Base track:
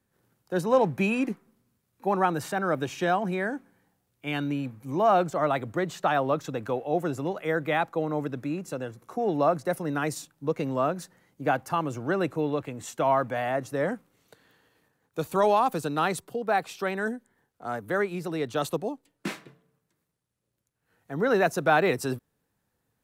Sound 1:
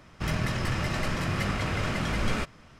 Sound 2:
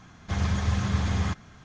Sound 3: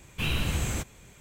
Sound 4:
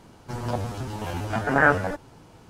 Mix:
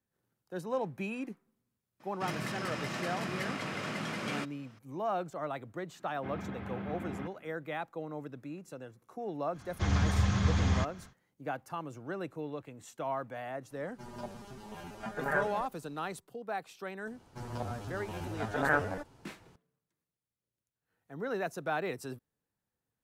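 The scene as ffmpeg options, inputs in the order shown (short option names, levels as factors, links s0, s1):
-filter_complex "[2:a]asplit=2[s0][s1];[4:a]asplit=2[s2][s3];[0:a]volume=0.251[s4];[1:a]highpass=f=150:w=0.5412,highpass=f=150:w=1.3066[s5];[s0]highpass=220,equalizer=f=230:t=q:w=4:g=4,equalizer=f=330:t=q:w=4:g=7,equalizer=f=500:t=q:w=4:g=-4,equalizer=f=1100:t=q:w=4:g=-8,equalizer=f=1800:t=q:w=4:g=-6,lowpass=f=2300:w=0.5412,lowpass=f=2300:w=1.3066[s6];[s2]aecho=1:1:5:0.82[s7];[s5]atrim=end=2.79,asetpts=PTS-STARTPTS,volume=0.501,afade=t=in:d=0.004:c=hsin,afade=t=out:st=2.786:d=0.004:c=hsin,adelay=2000[s8];[s6]atrim=end=1.64,asetpts=PTS-STARTPTS,volume=0.447,afade=t=in:d=0.1,afade=t=out:st=1.54:d=0.1,adelay=5940[s9];[s1]atrim=end=1.64,asetpts=PTS-STARTPTS,volume=0.794,afade=t=in:d=0.1,afade=t=out:st=1.54:d=0.1,adelay=9510[s10];[s7]atrim=end=2.49,asetpts=PTS-STARTPTS,volume=0.168,afade=t=in:d=0.004:c=hsin,afade=t=out:st=2.486:d=0.004:c=hsin,adelay=13700[s11];[s3]atrim=end=2.49,asetpts=PTS-STARTPTS,volume=0.316,afade=t=in:d=0.004:c=hsin,afade=t=out:st=2.486:d=0.004:c=hsin,adelay=17070[s12];[s4][s8][s9][s10][s11][s12]amix=inputs=6:normalize=0"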